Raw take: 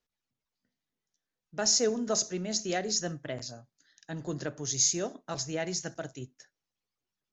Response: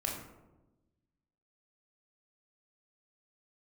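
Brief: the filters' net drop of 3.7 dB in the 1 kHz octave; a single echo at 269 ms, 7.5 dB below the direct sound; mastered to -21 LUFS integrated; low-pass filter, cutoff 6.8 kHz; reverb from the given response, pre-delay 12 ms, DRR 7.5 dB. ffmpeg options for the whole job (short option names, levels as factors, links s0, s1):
-filter_complex "[0:a]lowpass=6800,equalizer=f=1000:t=o:g=-6,aecho=1:1:269:0.422,asplit=2[s0][s1];[1:a]atrim=start_sample=2205,adelay=12[s2];[s1][s2]afir=irnorm=-1:irlink=0,volume=0.282[s3];[s0][s3]amix=inputs=2:normalize=0,volume=2.99"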